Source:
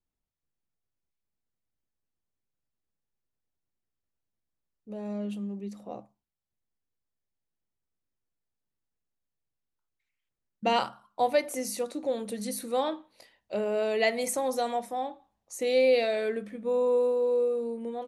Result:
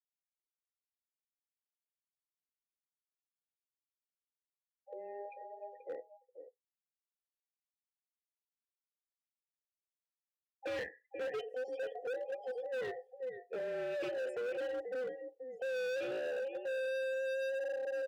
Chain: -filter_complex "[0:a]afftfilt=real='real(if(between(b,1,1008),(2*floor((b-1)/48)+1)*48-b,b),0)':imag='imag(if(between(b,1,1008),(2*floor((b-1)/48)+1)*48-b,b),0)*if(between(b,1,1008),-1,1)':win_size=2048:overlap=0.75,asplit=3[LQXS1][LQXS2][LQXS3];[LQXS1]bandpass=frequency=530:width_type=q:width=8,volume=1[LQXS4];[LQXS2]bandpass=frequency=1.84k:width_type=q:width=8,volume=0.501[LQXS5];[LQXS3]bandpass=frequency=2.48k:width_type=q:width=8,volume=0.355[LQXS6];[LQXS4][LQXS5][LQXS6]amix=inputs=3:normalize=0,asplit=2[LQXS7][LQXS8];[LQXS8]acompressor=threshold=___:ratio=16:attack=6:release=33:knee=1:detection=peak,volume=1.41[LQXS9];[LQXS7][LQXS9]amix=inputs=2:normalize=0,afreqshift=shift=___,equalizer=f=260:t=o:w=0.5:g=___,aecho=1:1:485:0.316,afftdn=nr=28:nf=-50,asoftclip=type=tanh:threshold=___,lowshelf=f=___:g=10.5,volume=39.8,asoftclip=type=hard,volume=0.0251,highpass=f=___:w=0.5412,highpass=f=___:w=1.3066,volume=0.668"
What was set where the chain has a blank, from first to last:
0.0112, -14, -4, 0.106, 89, 52, 52